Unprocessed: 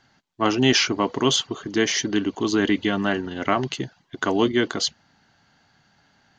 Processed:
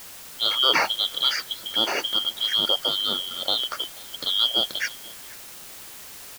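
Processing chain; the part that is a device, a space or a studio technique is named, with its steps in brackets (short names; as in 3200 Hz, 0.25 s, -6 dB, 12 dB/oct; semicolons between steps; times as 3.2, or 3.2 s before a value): split-band scrambled radio (four-band scrambler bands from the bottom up 2413; BPF 330–3000 Hz; white noise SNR 15 dB); echo 0.485 s -23 dB; gain +1.5 dB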